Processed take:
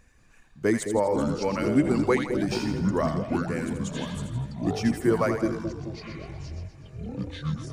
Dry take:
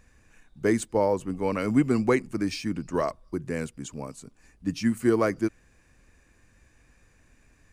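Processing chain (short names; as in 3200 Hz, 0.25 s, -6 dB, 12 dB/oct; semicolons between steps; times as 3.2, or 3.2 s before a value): reverb removal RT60 1 s; split-band echo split 600 Hz, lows 0.215 s, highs 82 ms, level -7 dB; echoes that change speed 0.188 s, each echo -7 st, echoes 3, each echo -6 dB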